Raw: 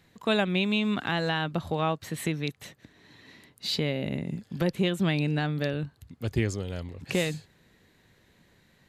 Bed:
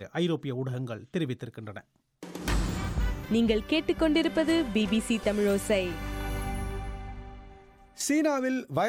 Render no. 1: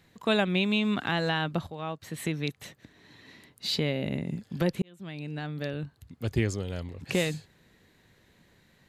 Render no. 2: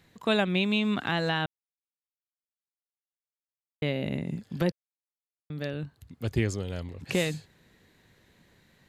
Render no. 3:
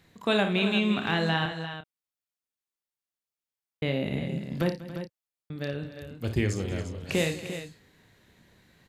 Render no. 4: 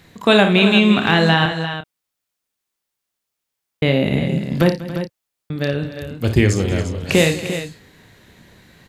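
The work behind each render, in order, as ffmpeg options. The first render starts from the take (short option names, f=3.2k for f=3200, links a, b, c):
-filter_complex "[0:a]asplit=3[a][b][c];[a]atrim=end=1.67,asetpts=PTS-STARTPTS,afade=t=out:st=1.666:d=0.004:c=hsin:silence=0.199526[d];[b]atrim=start=1.67:end=4.82,asetpts=PTS-STARTPTS,afade=t=in:d=0.78:silence=0.199526,afade=t=out:st=3.146:d=0.004:c=hsin[e];[c]atrim=start=4.82,asetpts=PTS-STARTPTS,afade=t=in:d=1.42[f];[d][e][f]concat=n=3:v=0:a=1"
-filter_complex "[0:a]asplit=5[a][b][c][d][e];[a]atrim=end=1.46,asetpts=PTS-STARTPTS,afade=t=out:st=1.456:d=0.004:c=hsin[f];[b]atrim=start=1.46:end=3.82,asetpts=PTS-STARTPTS,volume=0[g];[c]atrim=start=3.82:end=4.72,asetpts=PTS-STARTPTS,afade=t=in:d=0.004:c=hsin,afade=t=out:st=0.896:d=0.004:c=hsin[h];[d]atrim=start=4.72:end=5.5,asetpts=PTS-STARTPTS,volume=0[i];[e]atrim=start=5.5,asetpts=PTS-STARTPTS,afade=t=in:d=0.004:c=hsin[j];[f][g][h][i][j]concat=n=5:v=0:a=1"
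-filter_complex "[0:a]asplit=2[a][b];[b]adelay=30,volume=-10dB[c];[a][c]amix=inputs=2:normalize=0,aecho=1:1:56|66|193|281|349:0.316|0.112|0.133|0.168|0.299"
-af "volume=12dB,alimiter=limit=-1dB:level=0:latency=1"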